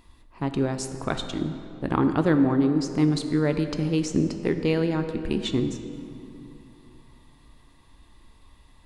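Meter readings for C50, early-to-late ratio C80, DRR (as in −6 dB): 8.5 dB, 9.0 dB, 7.5 dB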